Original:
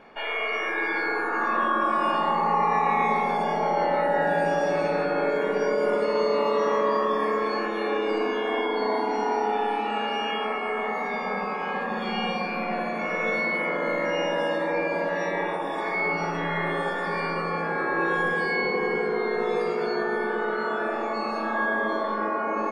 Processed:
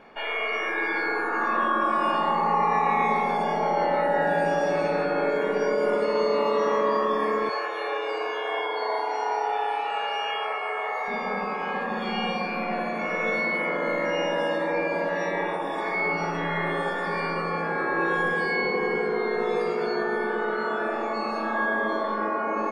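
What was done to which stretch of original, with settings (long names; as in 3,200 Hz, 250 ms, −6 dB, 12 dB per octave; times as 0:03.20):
0:07.49–0:11.08: high-pass filter 470 Hz 24 dB per octave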